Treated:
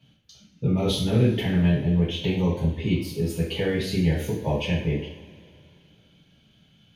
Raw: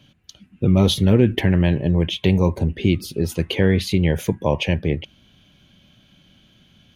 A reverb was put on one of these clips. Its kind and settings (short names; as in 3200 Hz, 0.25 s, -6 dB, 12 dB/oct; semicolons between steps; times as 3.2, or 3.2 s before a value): two-slope reverb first 0.52 s, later 2.7 s, from -19 dB, DRR -7.5 dB; gain -13.5 dB